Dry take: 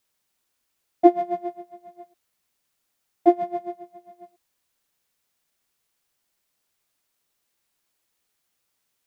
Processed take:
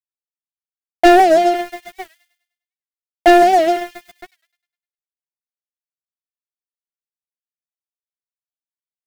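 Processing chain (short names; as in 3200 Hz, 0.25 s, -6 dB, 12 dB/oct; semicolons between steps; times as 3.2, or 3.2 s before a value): spectral trails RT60 0.57 s; HPF 660 Hz 6 dB/oct; gate with hold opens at -42 dBFS; 1.55–4.17 high shelf 2000 Hz +6.5 dB; sample leveller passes 5; crossover distortion -44 dBFS; Butterworth band-stop 1100 Hz, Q 5.6; thin delay 0.101 s, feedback 43%, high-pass 2700 Hz, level -12.5 dB; record warp 78 rpm, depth 160 cents; gain +2 dB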